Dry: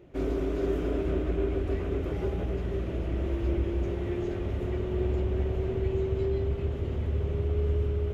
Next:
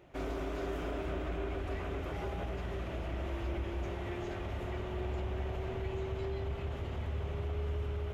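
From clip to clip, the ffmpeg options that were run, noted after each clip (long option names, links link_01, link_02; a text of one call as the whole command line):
ffmpeg -i in.wav -filter_complex "[0:a]lowshelf=frequency=570:width_type=q:width=1.5:gain=-7.5,asplit=2[link_01][link_02];[link_02]alimiter=level_in=9dB:limit=-24dB:level=0:latency=1,volume=-9dB,volume=2dB[link_03];[link_01][link_03]amix=inputs=2:normalize=0,volume=-5.5dB" out.wav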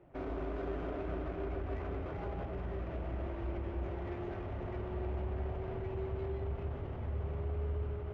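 ffmpeg -i in.wav -filter_complex "[0:a]flanger=delay=5.8:depth=9.3:regen=-71:speed=0.87:shape=triangular,acrossover=split=150[link_01][link_02];[link_02]adynamicsmooth=sensitivity=7:basefreq=1500[link_03];[link_01][link_03]amix=inputs=2:normalize=0,volume=3.5dB" out.wav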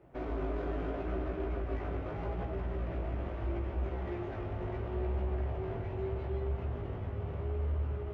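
ffmpeg -i in.wav -af "flanger=delay=15.5:depth=4:speed=0.77,volume=5dB" out.wav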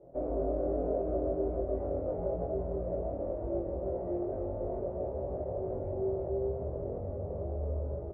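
ffmpeg -i in.wav -filter_complex "[0:a]lowpass=frequency=570:width_type=q:width=4.9,asplit=2[link_01][link_02];[link_02]adelay=23,volume=-2.5dB[link_03];[link_01][link_03]amix=inputs=2:normalize=0,volume=-3dB" out.wav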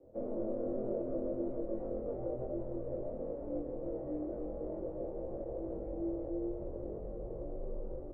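ffmpeg -i in.wav -af "afreqshift=-49,volume=-4.5dB" out.wav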